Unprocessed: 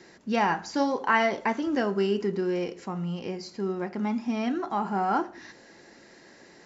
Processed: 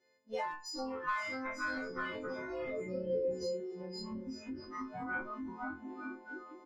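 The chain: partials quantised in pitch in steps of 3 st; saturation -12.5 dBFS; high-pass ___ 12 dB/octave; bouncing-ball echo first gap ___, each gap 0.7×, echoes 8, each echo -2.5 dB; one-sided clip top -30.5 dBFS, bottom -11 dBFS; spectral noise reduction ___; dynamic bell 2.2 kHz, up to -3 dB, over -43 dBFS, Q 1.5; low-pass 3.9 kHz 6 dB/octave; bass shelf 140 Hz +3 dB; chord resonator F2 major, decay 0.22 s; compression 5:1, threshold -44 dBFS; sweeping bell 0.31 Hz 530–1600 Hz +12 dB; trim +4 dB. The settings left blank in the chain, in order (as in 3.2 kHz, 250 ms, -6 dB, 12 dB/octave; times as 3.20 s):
57 Hz, 530 ms, 24 dB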